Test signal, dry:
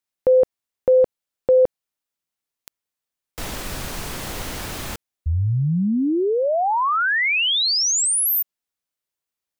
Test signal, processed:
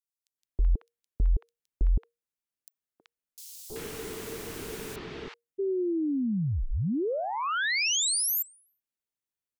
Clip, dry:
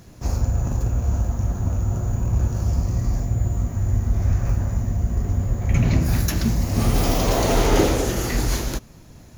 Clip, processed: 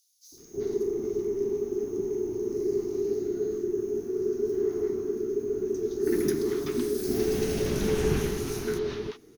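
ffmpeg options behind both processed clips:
ffmpeg -i in.wav -filter_complex "[0:a]afreqshift=-470,acrossover=split=810|4400[link_01][link_02][link_03];[link_01]adelay=320[link_04];[link_02]adelay=380[link_05];[link_04][link_05][link_03]amix=inputs=3:normalize=0,volume=-8dB" out.wav

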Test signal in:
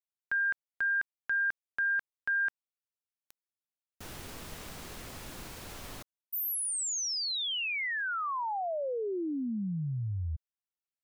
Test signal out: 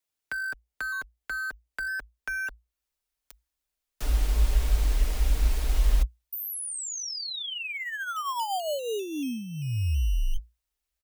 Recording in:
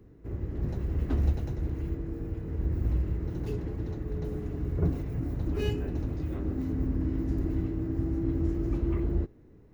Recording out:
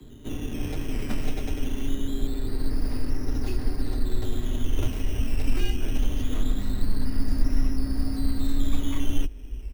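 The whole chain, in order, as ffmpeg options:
ffmpeg -i in.wav -filter_complex "[0:a]acrossover=split=110|230|900[link_01][link_02][link_03][link_04];[link_01]acompressor=threshold=-45dB:ratio=2.5[link_05];[link_02]acompressor=threshold=-47dB:ratio=2.5[link_06];[link_03]acompressor=threshold=-41dB:ratio=5[link_07];[link_04]acompressor=threshold=-49dB:ratio=2.5[link_08];[link_05][link_06][link_07][link_08]amix=inputs=4:normalize=0,aecho=1:1:6.1:0.38,asubboost=boost=10.5:cutoff=65,acrossover=split=1200[link_09][link_10];[link_09]acrusher=samples=12:mix=1:aa=0.000001:lfo=1:lforange=7.2:lforate=0.23[link_11];[link_11][link_10]amix=inputs=2:normalize=0,afreqshift=-58,volume=9dB" out.wav

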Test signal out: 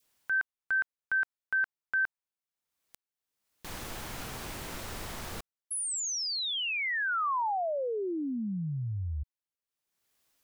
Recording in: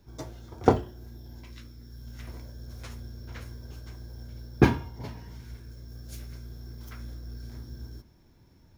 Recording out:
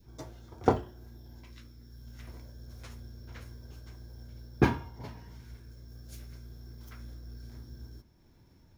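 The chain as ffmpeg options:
ffmpeg -i in.wav -af "acompressor=mode=upward:threshold=-49dB:ratio=2.5,adynamicequalizer=threshold=0.00794:dfrequency=1100:dqfactor=0.79:tfrequency=1100:tqfactor=0.79:attack=5:release=100:ratio=0.375:range=2:mode=boostabove:tftype=bell,volume=-5dB" out.wav

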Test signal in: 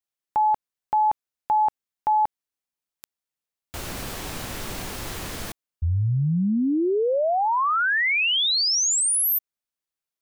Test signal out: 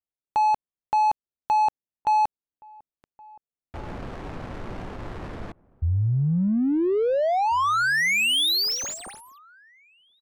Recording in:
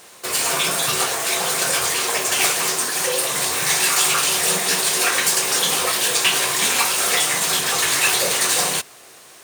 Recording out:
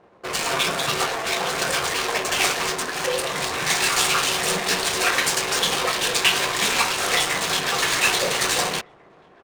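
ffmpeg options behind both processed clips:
ffmpeg -i in.wav -filter_complex "[0:a]adynamicsmooth=sensitivity=3:basefreq=700,asplit=2[link_01][link_02];[link_02]adelay=1691,volume=-24dB,highshelf=frequency=4000:gain=-38[link_03];[link_01][link_03]amix=inputs=2:normalize=0" out.wav

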